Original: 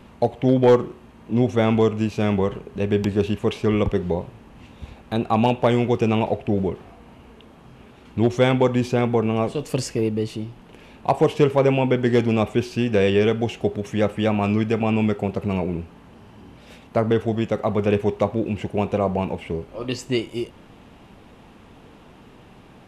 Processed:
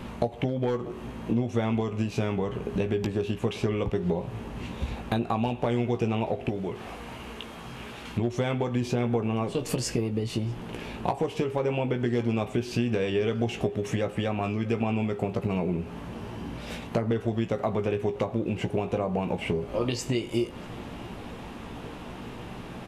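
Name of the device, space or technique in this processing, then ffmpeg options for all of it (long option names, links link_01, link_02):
serial compression, leveller first: -filter_complex "[0:a]acompressor=threshold=-24dB:ratio=2,acompressor=threshold=-32dB:ratio=6,asplit=2[link_01][link_02];[link_02]adelay=17,volume=-7.5dB[link_03];[link_01][link_03]amix=inputs=2:normalize=0,asettb=1/sr,asplit=3[link_04][link_05][link_06];[link_04]atrim=end=6.494[link_07];[link_05]atrim=start=6.49:end=8.18,asetpts=PTS-STARTPTS,afade=type=in:duration=0.004:curve=qsin,afade=type=out:start_time=1.686:duration=0.004:curve=qsin,tiltshelf=frequency=850:gain=-5[link_08];[link_06]atrim=start=8.176[link_09];[link_07][link_08]acrossfade=duration=0.004:curve1=hsin:curve2=qsin[link_10];[link_10][link_09]acrossfade=duration=0.004:curve1=qsin:curve2=hsin,asplit=2[link_11][link_12];[link_12]adelay=641.4,volume=-20dB,highshelf=frequency=4000:gain=-14.4[link_13];[link_11][link_13]amix=inputs=2:normalize=0,volume=7dB"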